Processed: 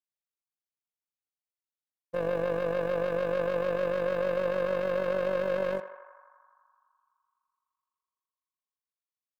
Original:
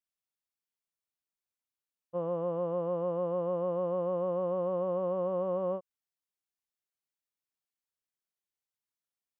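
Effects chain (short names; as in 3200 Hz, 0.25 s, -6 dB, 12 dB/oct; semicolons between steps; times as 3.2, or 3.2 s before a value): sample leveller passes 3; AM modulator 48 Hz, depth 50%; on a send: narrowing echo 84 ms, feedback 83%, band-pass 1100 Hz, level -10 dB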